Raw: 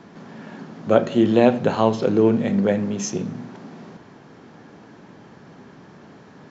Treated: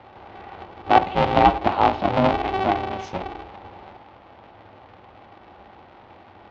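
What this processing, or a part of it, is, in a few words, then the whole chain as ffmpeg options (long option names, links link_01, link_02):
ring modulator pedal into a guitar cabinet: -af "aeval=exprs='val(0)*sgn(sin(2*PI*190*n/s))':channel_layout=same,highpass=84,equalizer=frequency=100:width_type=q:width=4:gain=5,equalizer=frequency=150:width_type=q:width=4:gain=-6,equalizer=frequency=420:width_type=q:width=4:gain=-8,equalizer=frequency=820:width_type=q:width=4:gain=9,equalizer=frequency=1700:width_type=q:width=4:gain=-4,lowpass=frequency=3600:width=0.5412,lowpass=frequency=3600:width=1.3066,volume=-1.5dB"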